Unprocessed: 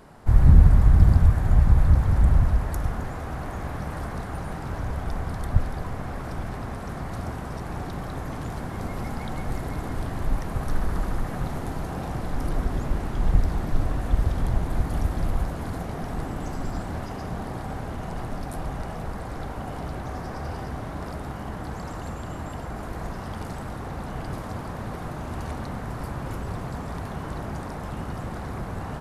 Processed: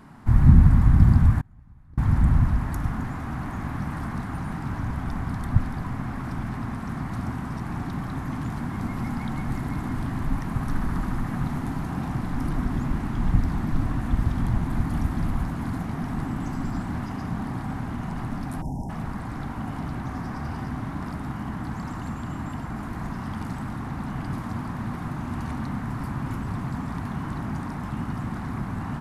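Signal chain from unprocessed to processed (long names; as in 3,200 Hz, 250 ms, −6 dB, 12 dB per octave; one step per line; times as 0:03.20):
octave-band graphic EQ 125/250/500/1,000/2,000 Hz +6/+11/−10/+6/+4 dB
0:01.41–0:01.98: noise gate −5 dBFS, range −32 dB
0:18.62–0:18.90: time-frequency box erased 990–5,000 Hz
level −3.5 dB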